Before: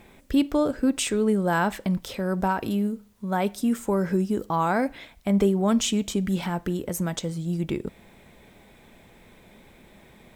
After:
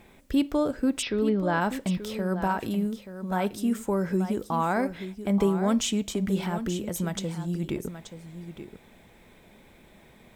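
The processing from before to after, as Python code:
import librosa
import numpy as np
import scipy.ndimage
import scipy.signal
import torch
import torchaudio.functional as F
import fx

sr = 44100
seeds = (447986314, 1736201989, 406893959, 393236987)

p1 = fx.steep_lowpass(x, sr, hz=5400.0, slope=96, at=(1.01, 1.6), fade=0.02)
p2 = p1 + fx.echo_single(p1, sr, ms=880, db=-11.0, dry=0)
y = p2 * 10.0 ** (-2.5 / 20.0)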